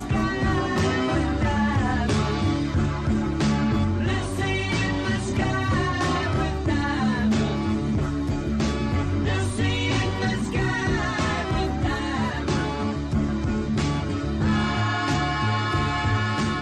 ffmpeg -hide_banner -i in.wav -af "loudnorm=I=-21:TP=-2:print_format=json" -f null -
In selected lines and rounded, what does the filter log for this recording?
"input_i" : "-24.1",
"input_tp" : "-13.6",
"input_lra" : "1.4",
"input_thresh" : "-34.1",